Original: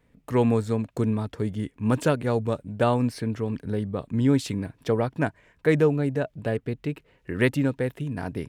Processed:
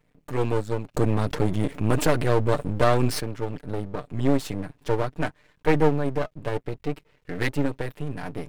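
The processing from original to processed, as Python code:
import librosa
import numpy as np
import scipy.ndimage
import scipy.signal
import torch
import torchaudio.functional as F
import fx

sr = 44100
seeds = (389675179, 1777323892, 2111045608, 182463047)

y = x + 0.8 * np.pad(x, (int(6.7 * sr / 1000.0), 0))[:len(x)]
y = np.maximum(y, 0.0)
y = fx.env_flatten(y, sr, amount_pct=50, at=(0.94, 3.19), fade=0.02)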